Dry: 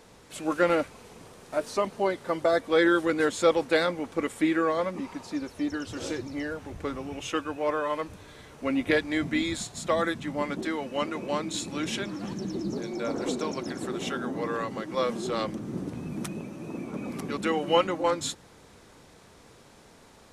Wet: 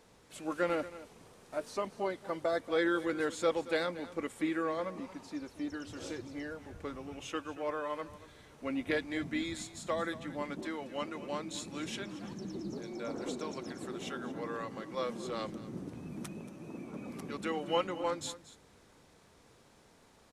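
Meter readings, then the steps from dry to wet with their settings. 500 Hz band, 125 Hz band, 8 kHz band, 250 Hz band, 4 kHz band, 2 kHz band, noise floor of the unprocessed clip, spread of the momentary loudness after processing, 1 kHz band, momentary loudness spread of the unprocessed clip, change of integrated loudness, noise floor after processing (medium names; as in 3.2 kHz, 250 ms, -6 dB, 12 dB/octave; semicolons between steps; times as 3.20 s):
-8.5 dB, -8.5 dB, -8.5 dB, -8.5 dB, -8.5 dB, -8.5 dB, -54 dBFS, 12 LU, -8.5 dB, 11 LU, -8.5 dB, -62 dBFS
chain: delay 230 ms -16 dB; trim -8.5 dB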